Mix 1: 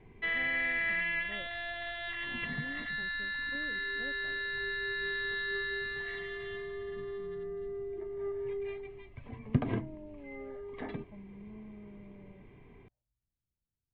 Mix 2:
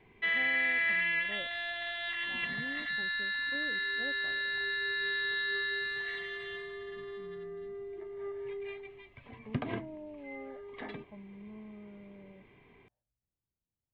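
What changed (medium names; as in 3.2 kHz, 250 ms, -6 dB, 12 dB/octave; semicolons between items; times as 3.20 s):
speech +6.0 dB; master: add tilt EQ +2.5 dB/octave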